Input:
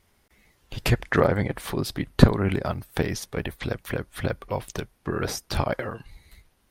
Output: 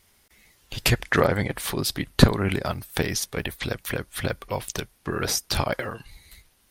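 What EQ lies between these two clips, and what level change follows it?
high shelf 2200 Hz +10 dB; -1.0 dB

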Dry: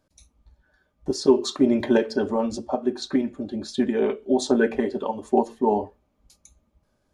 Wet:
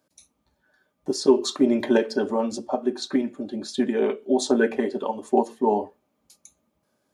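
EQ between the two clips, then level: HPF 190 Hz 12 dB/oct; tone controls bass +1 dB, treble -4 dB; high shelf 6600 Hz +11.5 dB; 0.0 dB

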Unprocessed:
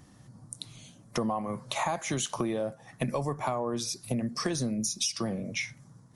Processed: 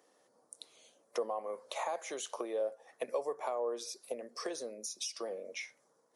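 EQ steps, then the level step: ladder high-pass 420 Hz, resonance 60%; +1.0 dB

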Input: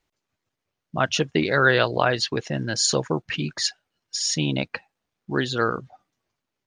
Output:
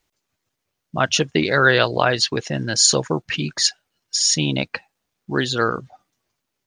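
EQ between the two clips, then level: high shelf 5000 Hz +8 dB; +2.5 dB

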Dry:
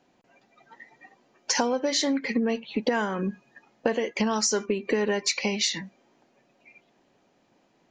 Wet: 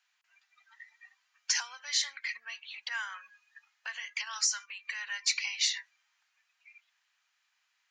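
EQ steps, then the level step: inverse Chebyshev high-pass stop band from 400 Hz, stop band 60 dB; -2.5 dB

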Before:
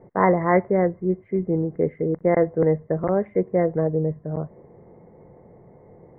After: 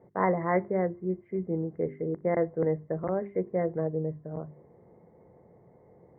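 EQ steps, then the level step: HPF 50 Hz; notches 50/100/150/200/250/300/350/400 Hz; -7.5 dB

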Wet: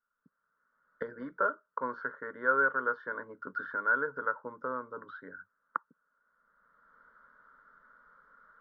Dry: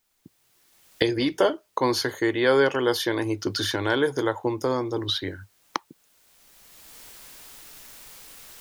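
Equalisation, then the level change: ladder low-pass 1500 Hz, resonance 80%; low shelf 73 Hz -7 dB; fixed phaser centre 510 Hz, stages 8; 0.0 dB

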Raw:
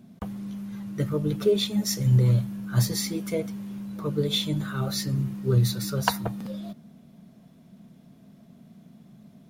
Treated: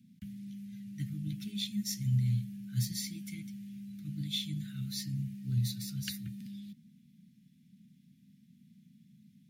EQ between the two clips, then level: HPF 90 Hz; inverse Chebyshev band-stop 440–1100 Hz, stop band 50 dB; -8.5 dB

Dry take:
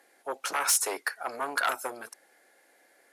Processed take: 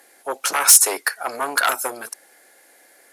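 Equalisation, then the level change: high shelf 5500 Hz +9 dB; +7.5 dB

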